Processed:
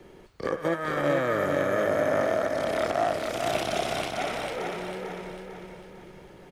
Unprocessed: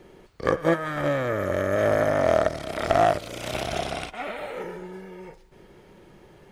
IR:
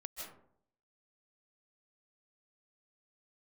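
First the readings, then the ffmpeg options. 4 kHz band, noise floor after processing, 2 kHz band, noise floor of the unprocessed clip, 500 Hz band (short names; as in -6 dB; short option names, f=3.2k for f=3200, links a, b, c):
+0.5 dB, -50 dBFS, -0.5 dB, -53 dBFS, -2.0 dB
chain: -filter_complex "[0:a]acrossover=split=150|1400[a][b][c];[a]acompressor=threshold=-48dB:ratio=6[d];[d][b][c]amix=inputs=3:normalize=0,alimiter=limit=-15.5dB:level=0:latency=1:release=136,aecho=1:1:448|896|1344|1792|2240|2688:0.631|0.278|0.122|0.0537|0.0236|0.0104"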